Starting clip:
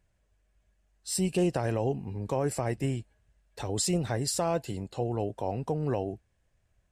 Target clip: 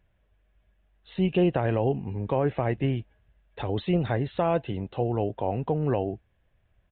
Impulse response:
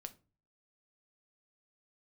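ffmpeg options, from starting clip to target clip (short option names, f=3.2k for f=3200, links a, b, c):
-af "aresample=8000,aresample=44100,volume=4dB"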